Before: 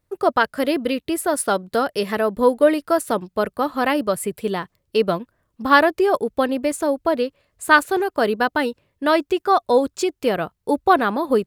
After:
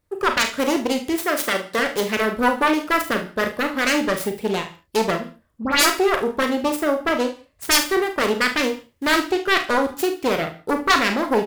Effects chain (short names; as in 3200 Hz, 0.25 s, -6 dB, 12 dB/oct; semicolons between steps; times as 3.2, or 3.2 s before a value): self-modulated delay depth 0.89 ms; 1.16–1.79 HPF 240 Hz 6 dB/oct; in parallel at +2 dB: limiter -11.5 dBFS, peak gain reduction 10 dB; 5.17–5.9 on the sum: dispersion highs, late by 72 ms, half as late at 2300 Hz; 8.61–9.2 companded quantiser 6-bit; on a send: early reflections 36 ms -9.5 dB, 49 ms -11 dB, 73 ms -15 dB; on the sum: non-linear reverb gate 0.19 s falling, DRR 10 dB; gain -7 dB